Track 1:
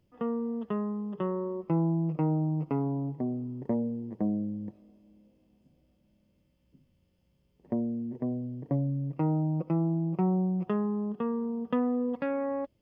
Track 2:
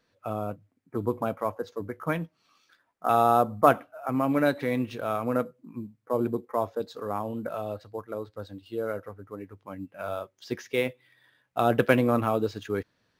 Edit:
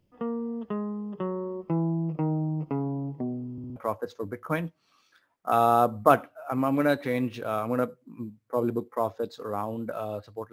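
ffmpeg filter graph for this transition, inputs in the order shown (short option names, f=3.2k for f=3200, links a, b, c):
-filter_complex "[0:a]apad=whole_dur=10.52,atrim=end=10.52,asplit=4[a][b][c][d];[a]atrim=end=3.582[e];[b]atrim=start=3.518:end=3.582[f];[c]atrim=start=3.518:end=3.582[g];[d]atrim=start=3.518:end=3.582[h];[1:a]atrim=start=1.328:end=8.09[i];[e][f]acrossfade=d=0.004:c1=hsin:c2=hsin[j];[j][g]acrossfade=d=0.004:c1=hsin:c2=hsin[k];[k][h]acrossfade=d=0.004:c1=hsin:c2=hsin[l];[l][i]acrossfade=d=0.004:c1=hsin:c2=hsin"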